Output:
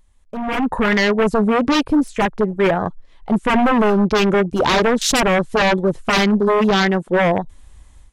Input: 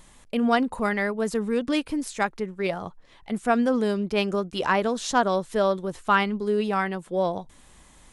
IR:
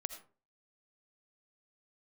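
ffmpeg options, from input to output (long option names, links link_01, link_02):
-af "aeval=exprs='0.0708*(abs(mod(val(0)/0.0708+3,4)-2)-1)':channel_layout=same,afwtdn=0.0126,dynaudnorm=framelen=400:gausssize=3:maxgain=13.5dB"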